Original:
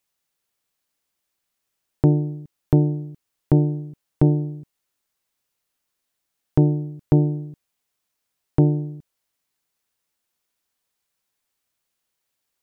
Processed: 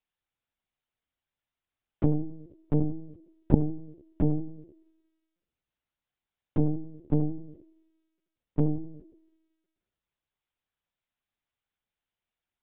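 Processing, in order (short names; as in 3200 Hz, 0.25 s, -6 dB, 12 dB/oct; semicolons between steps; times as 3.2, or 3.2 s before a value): narrowing echo 90 ms, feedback 62%, band-pass 400 Hz, level -9.5 dB; LPC vocoder at 8 kHz pitch kept; gain -7.5 dB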